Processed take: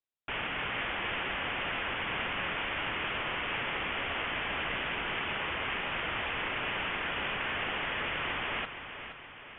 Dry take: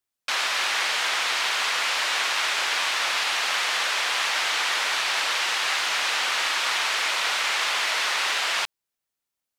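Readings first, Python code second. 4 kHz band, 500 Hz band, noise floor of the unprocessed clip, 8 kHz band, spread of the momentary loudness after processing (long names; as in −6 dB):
−13.5 dB, −2.0 dB, −85 dBFS, below −40 dB, 2 LU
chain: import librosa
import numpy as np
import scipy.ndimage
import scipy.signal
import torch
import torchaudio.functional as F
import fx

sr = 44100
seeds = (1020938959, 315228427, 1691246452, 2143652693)

y = fx.echo_feedback(x, sr, ms=471, feedback_pct=54, wet_db=-10)
y = fx.freq_invert(y, sr, carrier_hz=3900)
y = F.gain(torch.from_numpy(y), -9.0).numpy()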